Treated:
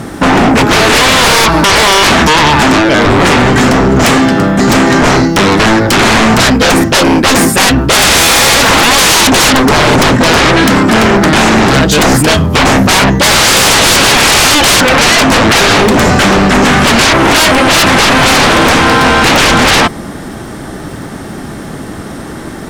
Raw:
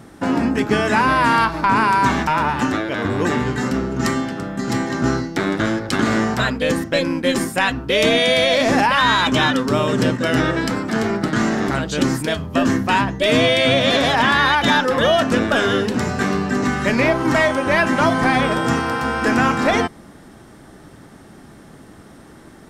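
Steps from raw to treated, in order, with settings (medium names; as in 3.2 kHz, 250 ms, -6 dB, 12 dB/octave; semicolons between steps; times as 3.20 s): sine folder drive 14 dB, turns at -5.5 dBFS; crackle 180 per s -33 dBFS; trim +2 dB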